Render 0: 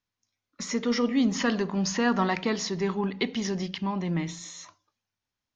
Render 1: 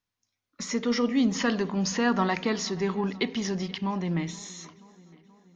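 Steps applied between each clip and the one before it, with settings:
feedback echo with a low-pass in the loop 479 ms, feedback 62%, low-pass 4,500 Hz, level −22 dB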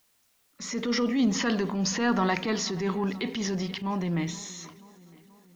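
background noise white −69 dBFS
transient designer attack −8 dB, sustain +2 dB
level +1 dB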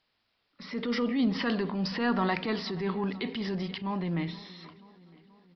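downsampling to 11,025 Hz
level −2.5 dB

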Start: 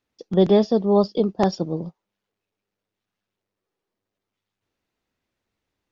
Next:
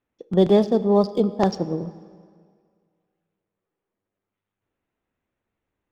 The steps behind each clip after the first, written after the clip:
adaptive Wiener filter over 9 samples
dense smooth reverb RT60 2 s, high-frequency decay 0.8×, DRR 14.5 dB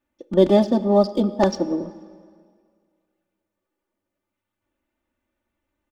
comb filter 3.4 ms, depth 96%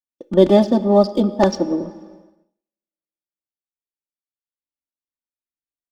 downward expander −44 dBFS
level +3 dB

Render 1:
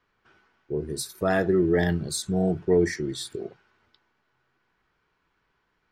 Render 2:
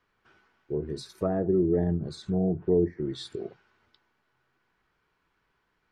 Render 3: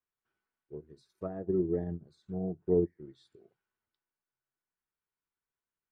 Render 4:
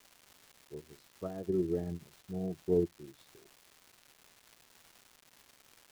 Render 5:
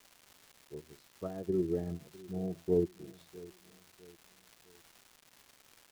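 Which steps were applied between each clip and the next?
treble cut that deepens with the level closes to 550 Hz, closed at −20.5 dBFS; level −1.5 dB
expander for the loud parts 2.5 to 1, over −35 dBFS; level −2 dB
surface crackle 530 per second −44 dBFS; level −2 dB
repeating echo 653 ms, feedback 40%, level −20.5 dB

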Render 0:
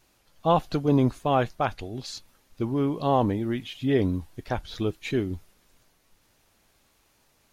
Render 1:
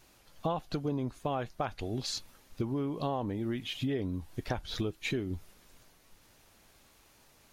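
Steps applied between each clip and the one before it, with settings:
downward compressor 8 to 1, threshold −33 dBFS, peak gain reduction 16.5 dB
level +3 dB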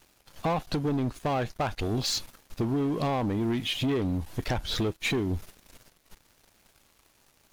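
leveller curve on the samples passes 3
level −2 dB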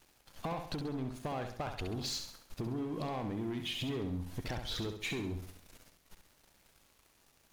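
downward compressor, threshold −31 dBFS, peak gain reduction 6.5 dB
on a send: flutter between parallel walls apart 11.5 metres, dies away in 0.56 s
on the sum: level −5 dB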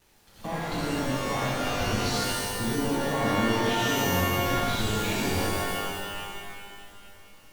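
in parallel at −6 dB: decimation without filtering 34×
on the sum: reverb with rising layers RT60 2.2 s, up +12 semitones, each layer −2 dB, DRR −7 dB
level −1.5 dB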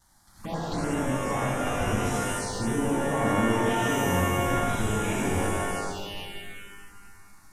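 variable-slope delta modulation 64 kbit/s
phaser swept by the level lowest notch 430 Hz, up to 4,400 Hz, full sweep at −25 dBFS
level +1.5 dB

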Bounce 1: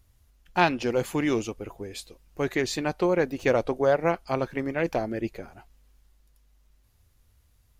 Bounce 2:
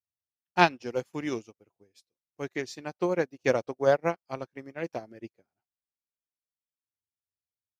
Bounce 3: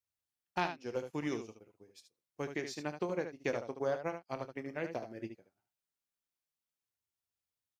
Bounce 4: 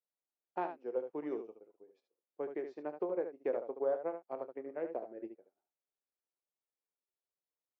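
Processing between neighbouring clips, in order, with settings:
high-pass filter 94 Hz 24 dB per octave; parametric band 5,500 Hz +9 dB 0.34 octaves; expander for the loud parts 2.5 to 1, over −44 dBFS; level +2.5 dB
downward compressor 3 to 1, threshold −37 dBFS, peak gain reduction 17 dB; ambience of single reflections 27 ms −13 dB, 74 ms −8.5 dB; level +1 dB
four-pole ladder band-pass 540 Hz, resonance 30%; level +10.5 dB

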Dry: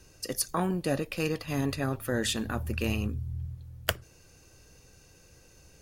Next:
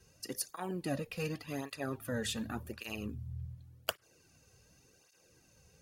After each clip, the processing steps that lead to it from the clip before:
through-zero flanger with one copy inverted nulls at 0.88 Hz, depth 3.5 ms
level −4.5 dB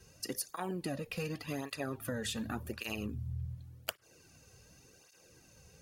downward compressor 10 to 1, threshold −38 dBFS, peak gain reduction 11.5 dB
level +4.5 dB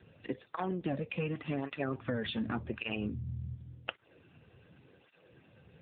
level +4 dB
AMR narrowband 7.95 kbit/s 8,000 Hz

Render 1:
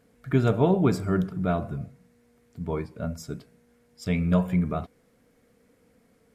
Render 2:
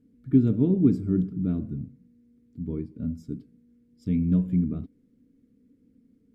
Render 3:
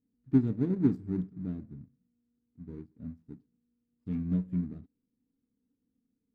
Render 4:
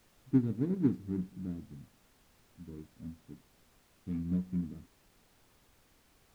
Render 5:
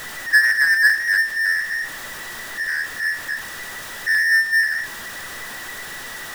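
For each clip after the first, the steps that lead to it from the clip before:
drawn EQ curve 170 Hz 0 dB, 270 Hz +9 dB, 710 Hz −24 dB, 3,400 Hz −15 dB, 8,100 Hz −18 dB; level −1 dB
running median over 41 samples; expander for the loud parts 1.5 to 1, over −43 dBFS; level −4 dB
background noise pink −63 dBFS; level −3 dB
frequency inversion band by band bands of 2,000 Hz; power curve on the samples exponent 0.5; level +8.5 dB

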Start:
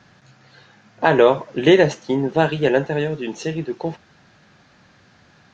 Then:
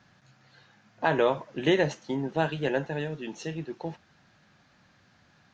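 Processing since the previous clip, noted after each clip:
parametric band 420 Hz −4 dB 0.61 octaves
level −8.5 dB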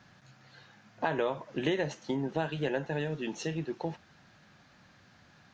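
downward compressor 3 to 1, threshold −31 dBFS, peak gain reduction 10 dB
level +2 dB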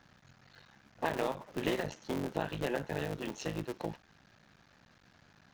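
sub-harmonics by changed cycles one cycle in 3, muted
level −1.5 dB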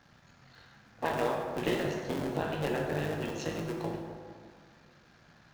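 dense smooth reverb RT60 2 s, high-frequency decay 0.5×, DRR 0 dB

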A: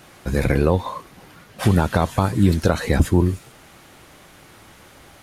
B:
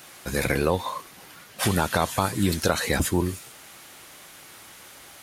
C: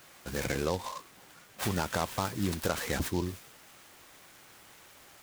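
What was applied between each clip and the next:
spectral tilt +2.5 dB per octave; level −1.5 dB
short delay modulated by noise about 4,200 Hz, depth 0.051 ms; level −8 dB

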